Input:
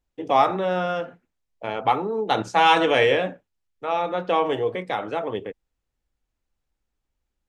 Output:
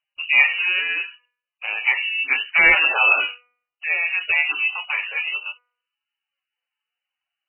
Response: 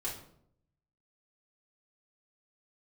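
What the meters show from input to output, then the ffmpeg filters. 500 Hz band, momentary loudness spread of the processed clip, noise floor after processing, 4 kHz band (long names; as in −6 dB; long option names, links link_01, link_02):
−15.0 dB, 14 LU, below −85 dBFS, +4.0 dB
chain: -af "lowpass=frequency=2600:width_type=q:width=0.5098,lowpass=frequency=2600:width_type=q:width=0.6013,lowpass=frequency=2600:width_type=q:width=0.9,lowpass=frequency=2600:width_type=q:width=2.563,afreqshift=-3100,bandreject=frequency=244.8:width_type=h:width=4,bandreject=frequency=489.6:width_type=h:width=4,bandreject=frequency=734.4:width_type=h:width=4,bandreject=frequency=979.2:width_type=h:width=4,bandreject=frequency=1224:width_type=h:width=4,bandreject=frequency=1468.8:width_type=h:width=4,bandreject=frequency=1713.6:width_type=h:width=4,bandreject=frequency=1958.4:width_type=h:width=4,bandreject=frequency=2203.2:width_type=h:width=4,bandreject=frequency=2448:width_type=h:width=4,volume=2.5dB" -ar 12000 -c:a libmp3lame -b:a 8k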